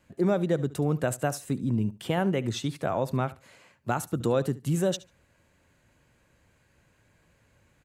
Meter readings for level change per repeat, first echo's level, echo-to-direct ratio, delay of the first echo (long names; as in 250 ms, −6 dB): −16.0 dB, −18.5 dB, −18.5 dB, 72 ms